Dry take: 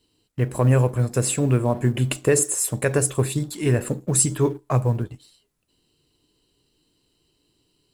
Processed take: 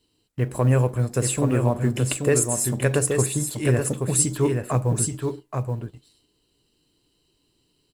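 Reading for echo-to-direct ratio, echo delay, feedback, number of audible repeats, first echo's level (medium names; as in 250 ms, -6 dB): -5.0 dB, 827 ms, no regular repeats, 1, -5.0 dB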